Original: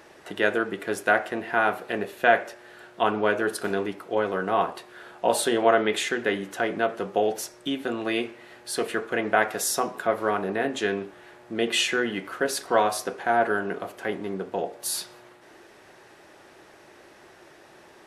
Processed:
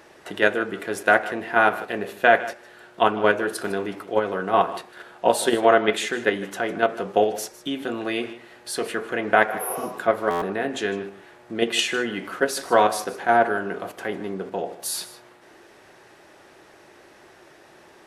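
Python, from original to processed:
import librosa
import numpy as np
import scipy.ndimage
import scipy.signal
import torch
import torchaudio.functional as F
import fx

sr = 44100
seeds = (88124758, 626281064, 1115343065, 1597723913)

p1 = fx.spec_repair(x, sr, seeds[0], start_s=9.52, length_s=0.29, low_hz=360.0, high_hz=10000.0, source='both')
p2 = fx.level_steps(p1, sr, step_db=22)
p3 = p1 + (p2 * 10.0 ** (1.0 / 20.0))
p4 = p3 + 10.0 ** (-16.5 / 20.0) * np.pad(p3, (int(154 * sr / 1000.0), 0))[:len(p3)]
p5 = fx.buffer_glitch(p4, sr, at_s=(10.3,), block=512, repeats=9)
y = p5 * 10.0 ** (-1.0 / 20.0)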